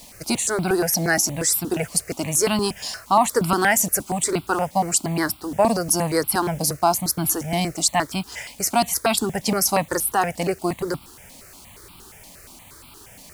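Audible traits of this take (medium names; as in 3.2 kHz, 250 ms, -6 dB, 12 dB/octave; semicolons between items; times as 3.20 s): a quantiser's noise floor 8-bit, dither none; notches that jump at a steady rate 8.5 Hz 380–1800 Hz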